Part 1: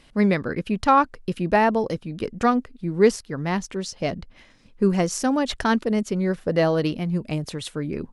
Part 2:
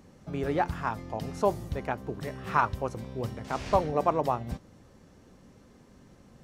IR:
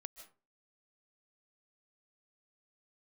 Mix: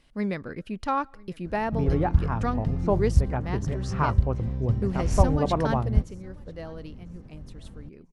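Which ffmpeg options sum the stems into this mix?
-filter_complex "[0:a]volume=-10.5dB,afade=type=out:start_time=5.69:duration=0.54:silence=0.316228,asplit=3[link_01][link_02][link_03];[link_02]volume=-15dB[link_04];[link_03]volume=-24dB[link_05];[1:a]aemphasis=mode=reproduction:type=riaa,adelay=1450,volume=-2dB[link_06];[2:a]atrim=start_sample=2205[link_07];[link_04][link_07]afir=irnorm=-1:irlink=0[link_08];[link_05]aecho=0:1:995|1990|2985|3980:1|0.29|0.0841|0.0244[link_09];[link_01][link_06][link_08][link_09]amix=inputs=4:normalize=0,lowshelf=frequency=77:gain=6"

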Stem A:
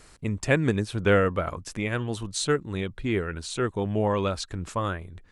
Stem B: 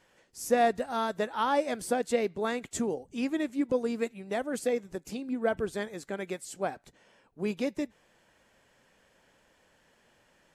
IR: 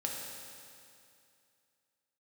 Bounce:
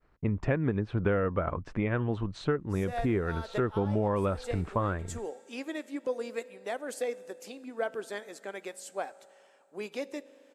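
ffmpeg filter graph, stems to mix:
-filter_complex "[0:a]agate=range=-33dB:threshold=-42dB:ratio=3:detection=peak,lowpass=1600,volume=2.5dB,asplit=2[link_01][link_02];[1:a]highpass=400,adelay=2350,volume=-3dB,asplit=2[link_03][link_04];[link_04]volume=-18dB[link_05];[link_02]apad=whole_len=568722[link_06];[link_03][link_06]sidechaincompress=threshold=-39dB:ratio=8:attack=10:release=208[link_07];[2:a]atrim=start_sample=2205[link_08];[link_05][link_08]afir=irnorm=-1:irlink=0[link_09];[link_01][link_07][link_09]amix=inputs=3:normalize=0,acompressor=threshold=-24dB:ratio=6"

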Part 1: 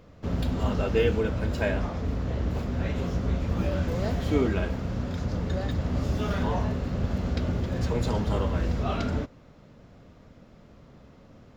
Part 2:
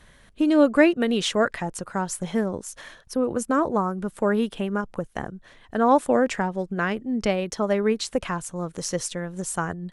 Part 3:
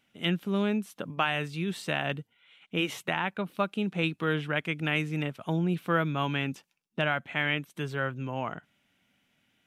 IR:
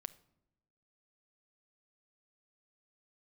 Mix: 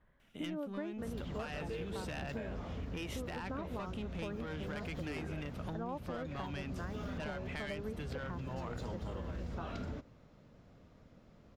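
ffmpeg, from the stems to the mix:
-filter_complex "[0:a]adelay=750,volume=-10.5dB,asplit=2[link_01][link_02];[link_02]volume=-8dB[link_03];[1:a]lowpass=1500,volume=-15.5dB[link_04];[2:a]adelay=200,volume=0dB[link_05];[link_01][link_05]amix=inputs=2:normalize=0,asoftclip=type=tanh:threshold=-25dB,acompressor=threshold=-37dB:ratio=6,volume=0dB[link_06];[3:a]atrim=start_sample=2205[link_07];[link_03][link_07]afir=irnorm=-1:irlink=0[link_08];[link_04][link_06][link_08]amix=inputs=3:normalize=0,acompressor=threshold=-37dB:ratio=6"

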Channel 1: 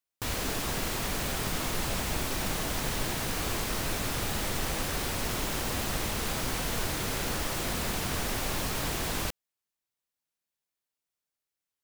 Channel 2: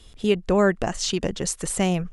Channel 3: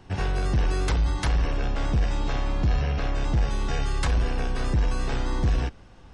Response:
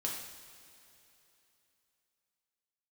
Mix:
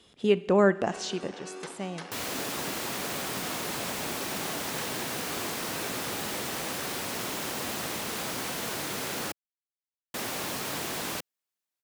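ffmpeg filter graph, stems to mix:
-filter_complex "[0:a]adelay=1900,volume=-0.5dB,asplit=3[link_01][link_02][link_03];[link_01]atrim=end=9.32,asetpts=PTS-STARTPTS,afade=type=out:start_time=9.316:duration=0.004:curve=hsin[link_04];[link_02]atrim=start=9.32:end=10.14,asetpts=PTS-STARTPTS,volume=0[link_05];[link_03]atrim=start=10.14,asetpts=PTS-STARTPTS,afade=type=in:duration=0.004:curve=hsin[link_06];[link_04][link_05][link_06]concat=n=3:v=0:a=1[link_07];[1:a]highshelf=frequency=4500:gain=-8.5,volume=-3dB,afade=type=out:start_time=0.83:duration=0.58:silence=0.298538,asplit=2[link_08][link_09];[link_09]volume=-14.5dB[link_10];[2:a]highpass=frequency=250:width=0.5412,highpass=frequency=250:width=1.3066,adelay=750,volume=-14dB,asplit=2[link_11][link_12];[link_12]volume=-5.5dB[link_13];[3:a]atrim=start_sample=2205[link_14];[link_10][link_13]amix=inputs=2:normalize=0[link_15];[link_15][link_14]afir=irnorm=-1:irlink=0[link_16];[link_07][link_08][link_11][link_16]amix=inputs=4:normalize=0,highpass=180"

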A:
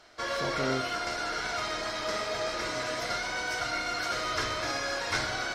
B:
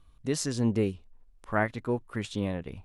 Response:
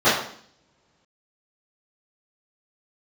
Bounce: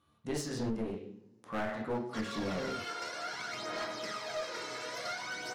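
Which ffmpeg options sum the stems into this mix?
-filter_complex "[0:a]highpass=frequency=130:width=0.5412,highpass=frequency=130:width=1.3066,aphaser=in_gain=1:out_gain=1:delay=2.3:decay=0.5:speed=0.54:type=sinusoidal,adelay=1950,volume=-8dB[link_01];[1:a]highpass=frequency=100:width=0.5412,highpass=frequency=100:width=1.3066,volume=-5dB,asplit=2[link_02][link_03];[link_03]volume=-19.5dB[link_04];[2:a]atrim=start_sample=2205[link_05];[link_04][link_05]afir=irnorm=-1:irlink=0[link_06];[link_01][link_02][link_06]amix=inputs=3:normalize=0,aeval=exprs='clip(val(0),-1,0.0266)':channel_layout=same,alimiter=level_in=0.5dB:limit=-24dB:level=0:latency=1:release=252,volume=-0.5dB"

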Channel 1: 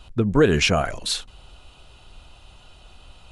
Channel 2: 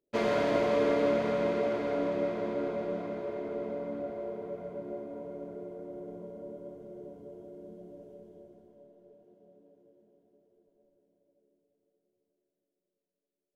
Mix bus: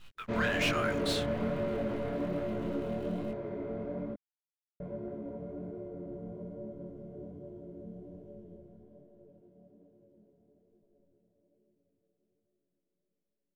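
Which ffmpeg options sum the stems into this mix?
ffmpeg -i stem1.wav -i stem2.wav -filter_complex "[0:a]highpass=frequency=1300:width=0.5412,highpass=frequency=1300:width=1.3066,acrusher=bits=9:dc=4:mix=0:aa=0.000001,asoftclip=type=tanh:threshold=-24.5dB,volume=2dB[link_01];[1:a]asoftclip=type=tanh:threshold=-28dB,adelay=150,volume=-0.5dB,asplit=3[link_02][link_03][link_04];[link_02]atrim=end=4.14,asetpts=PTS-STARTPTS,afade=type=out:start_time=4.136:duration=0.004:curve=hsin[link_05];[link_03]atrim=start=4.14:end=4.8,asetpts=PTS-STARTPTS,volume=0[link_06];[link_04]atrim=start=4.8,asetpts=PTS-STARTPTS,afade=type=in:duration=0.004:curve=hsin[link_07];[link_05][link_06][link_07]concat=n=3:v=0:a=1[link_08];[link_01][link_08]amix=inputs=2:normalize=0,bass=frequency=250:gain=14,treble=frequency=4000:gain=-9,flanger=delay=19:depth=7.8:speed=1.2" out.wav

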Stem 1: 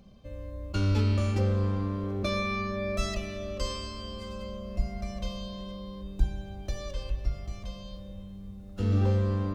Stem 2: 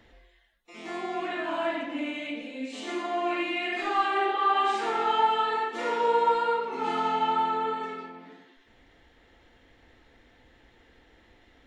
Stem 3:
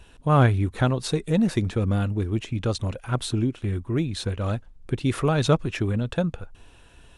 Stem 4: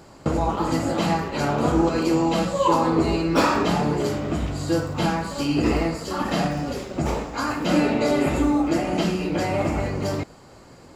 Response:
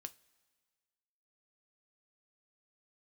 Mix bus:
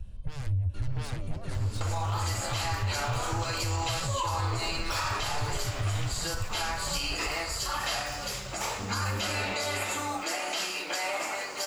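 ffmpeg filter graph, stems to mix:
-filter_complex "[0:a]flanger=delay=22.5:depth=7:speed=1.6,volume=-3dB,asplit=2[link_01][link_02];[link_02]volume=-11dB[link_03];[1:a]aeval=exprs='val(0)*sin(2*PI*310*n/s)':channel_layout=same,adelay=800,volume=1dB[link_04];[2:a]aeval=exprs='0.422*sin(PI/2*6.31*val(0)/0.422)':channel_layout=same,volume=-8dB,asplit=3[link_05][link_06][link_07];[link_06]volume=-23.5dB[link_08];[3:a]highpass=890,highshelf=frequency=3000:gain=9.5,adelay=1550,volume=-1.5dB[link_09];[link_07]apad=whole_len=421048[link_10];[link_01][link_10]sidechaincompress=threshold=-33dB:ratio=8:attack=16:release=203[link_11];[link_04][link_05]amix=inputs=2:normalize=0,firequalizer=gain_entry='entry(110,0);entry(190,-29);entry(9500,-22)':delay=0.05:min_phase=1,acompressor=threshold=-25dB:ratio=6,volume=0dB[link_12];[link_03][link_08]amix=inputs=2:normalize=0,aecho=0:1:695:1[link_13];[link_11][link_09][link_12][link_13]amix=inputs=4:normalize=0,alimiter=limit=-21dB:level=0:latency=1:release=96"

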